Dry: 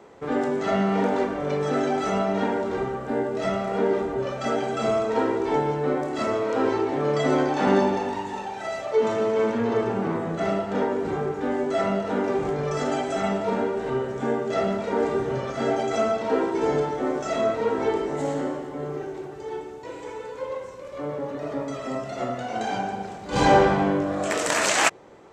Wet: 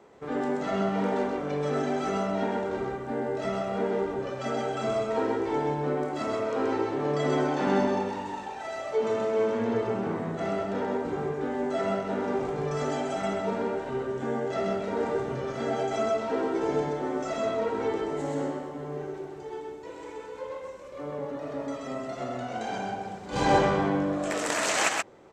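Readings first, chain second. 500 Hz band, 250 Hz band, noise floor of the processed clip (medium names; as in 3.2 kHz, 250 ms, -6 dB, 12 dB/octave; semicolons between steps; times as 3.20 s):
-4.0 dB, -4.0 dB, -41 dBFS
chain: delay 129 ms -3.5 dB; trim -6 dB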